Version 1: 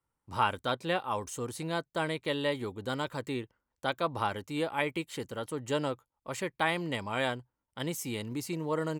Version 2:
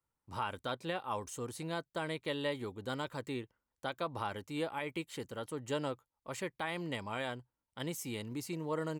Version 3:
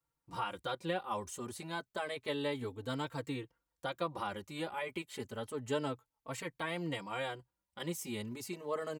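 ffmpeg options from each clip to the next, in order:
ffmpeg -i in.wav -af "alimiter=limit=-20dB:level=0:latency=1:release=116,volume=-4.5dB" out.wav
ffmpeg -i in.wav -filter_complex "[0:a]asplit=2[link_01][link_02];[link_02]adelay=3.9,afreqshift=0.3[link_03];[link_01][link_03]amix=inputs=2:normalize=1,volume=3dB" out.wav

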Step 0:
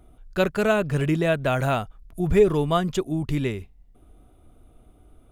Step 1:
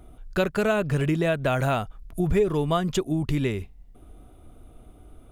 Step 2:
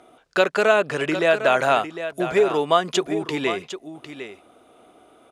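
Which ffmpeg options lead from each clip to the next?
ffmpeg -i in.wav -af "acompressor=threshold=-27dB:ratio=2.5,volume=4.5dB" out.wav
ffmpeg -i in.wav -filter_complex "[0:a]highpass=460,lowpass=7000,asplit=2[link_01][link_02];[link_02]aecho=0:1:754:0.282[link_03];[link_01][link_03]amix=inputs=2:normalize=0,volume=8dB" out.wav

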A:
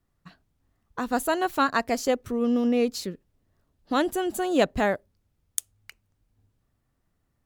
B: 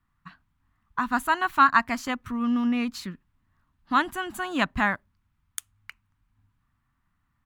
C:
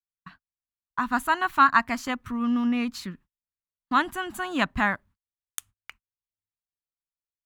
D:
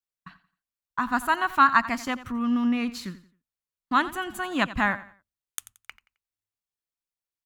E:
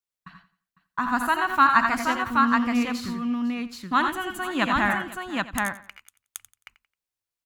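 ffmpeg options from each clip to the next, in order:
ffmpeg -i in.wav -af "firequalizer=gain_entry='entry(240,0);entry(460,-18);entry(1000,8);entry(5100,-6)':delay=0.05:min_phase=1" out.wav
ffmpeg -i in.wav -af "agate=range=-38dB:threshold=-50dB:ratio=16:detection=peak" out.wav
ffmpeg -i in.wav -af "aecho=1:1:88|176|264:0.158|0.0491|0.0152" out.wav
ffmpeg -i in.wav -af "aecho=1:1:69|82|98|502|776:0.224|0.447|0.282|0.112|0.708" out.wav

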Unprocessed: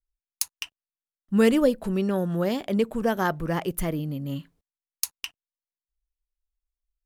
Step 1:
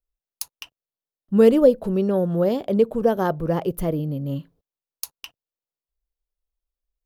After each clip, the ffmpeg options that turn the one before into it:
ffmpeg -i in.wav -af "equalizer=frequency=125:width_type=o:width=1:gain=5,equalizer=frequency=500:width_type=o:width=1:gain=8,equalizer=frequency=2000:width_type=o:width=1:gain=-7,equalizer=frequency=8000:width_type=o:width=1:gain=-8" out.wav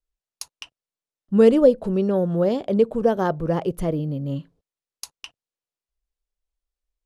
ffmpeg -i in.wav -af "lowpass=frequency=9800:width=0.5412,lowpass=frequency=9800:width=1.3066" out.wav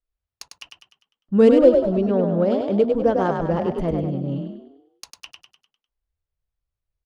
ffmpeg -i in.wav -filter_complex "[0:a]adynamicsmooth=sensitivity=2:basefreq=3700,asplit=7[link_01][link_02][link_03][link_04][link_05][link_06][link_07];[link_02]adelay=100,afreqshift=34,volume=-5dB[link_08];[link_03]adelay=200,afreqshift=68,volume=-11.9dB[link_09];[link_04]adelay=300,afreqshift=102,volume=-18.9dB[link_10];[link_05]adelay=400,afreqshift=136,volume=-25.8dB[link_11];[link_06]adelay=500,afreqshift=170,volume=-32.7dB[link_12];[link_07]adelay=600,afreqshift=204,volume=-39.7dB[link_13];[link_01][link_08][link_09][link_10][link_11][link_12][link_13]amix=inputs=7:normalize=0" out.wav

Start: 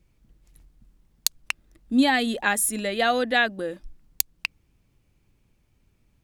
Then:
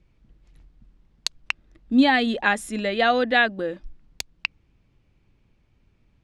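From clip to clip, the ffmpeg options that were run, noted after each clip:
ffmpeg -i in.wav -af "lowpass=4200,volume=2.5dB" out.wav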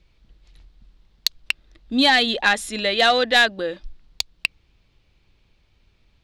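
ffmpeg -i in.wav -af "equalizer=frequency=125:width_type=o:width=1:gain=-5,equalizer=frequency=250:width_type=o:width=1:gain=-6,equalizer=frequency=4000:width_type=o:width=1:gain=10,acontrast=89,volume=-4dB" out.wav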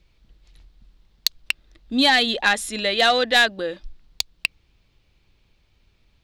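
ffmpeg -i in.wav -af "crystalizer=i=0.5:c=0,volume=-1dB" out.wav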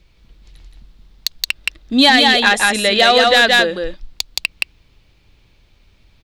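ffmpeg -i in.wav -af "aecho=1:1:172:0.668,alimiter=level_in=8dB:limit=-1dB:release=50:level=0:latency=1,volume=-1dB" out.wav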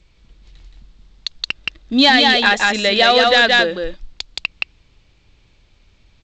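ffmpeg -i in.wav -af "volume=-1dB" -ar 16000 -c:a g722 out.g722

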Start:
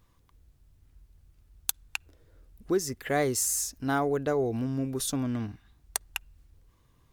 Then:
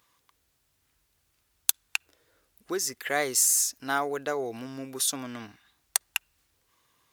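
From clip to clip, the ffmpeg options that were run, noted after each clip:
ffmpeg -i in.wav -af "highpass=frequency=1300:poles=1,volume=6dB" out.wav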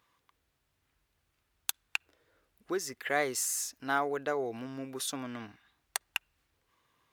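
ffmpeg -i in.wav -af "bass=frequency=250:gain=0,treble=frequency=4000:gain=-9,volume=-2dB" out.wav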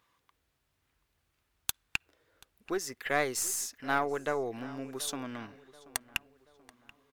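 ffmpeg -i in.wav -filter_complex "[0:a]aeval=exprs='0.316*(cos(1*acos(clip(val(0)/0.316,-1,1)))-cos(1*PI/2))+0.02*(cos(6*acos(clip(val(0)/0.316,-1,1)))-cos(6*PI/2))':channel_layout=same,asplit=2[link_01][link_02];[link_02]adelay=732,lowpass=frequency=3000:poles=1,volume=-19dB,asplit=2[link_03][link_04];[link_04]adelay=732,lowpass=frequency=3000:poles=1,volume=0.45,asplit=2[link_05][link_06];[link_06]adelay=732,lowpass=frequency=3000:poles=1,volume=0.45,asplit=2[link_07][link_08];[link_08]adelay=732,lowpass=frequency=3000:poles=1,volume=0.45[link_09];[link_01][link_03][link_05][link_07][link_09]amix=inputs=5:normalize=0" out.wav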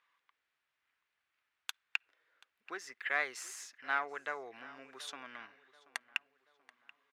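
ffmpeg -i in.wav -af "bandpass=frequency=1900:width_type=q:width=1.2:csg=0" out.wav

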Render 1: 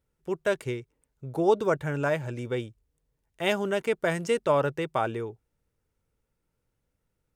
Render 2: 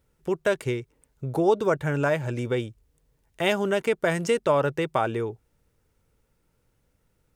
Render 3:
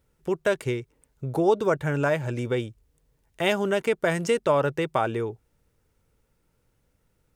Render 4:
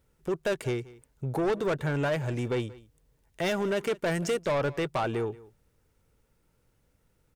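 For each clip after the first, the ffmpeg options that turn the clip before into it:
ffmpeg -i in.wav -af "acompressor=threshold=-40dB:ratio=1.5,volume=9dB" out.wav
ffmpeg -i in.wav -af anull out.wav
ffmpeg -i in.wav -af "asoftclip=type=tanh:threshold=-23dB,aecho=1:1:181:0.0944" out.wav

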